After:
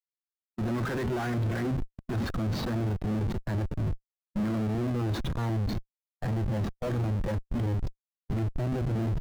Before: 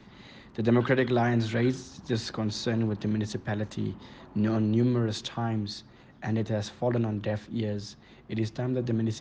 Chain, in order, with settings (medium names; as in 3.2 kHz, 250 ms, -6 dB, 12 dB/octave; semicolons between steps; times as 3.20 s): peaking EQ 1.4 kHz +8 dB 1.1 oct; Schmitt trigger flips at -33.5 dBFS; spectral contrast expander 1.5:1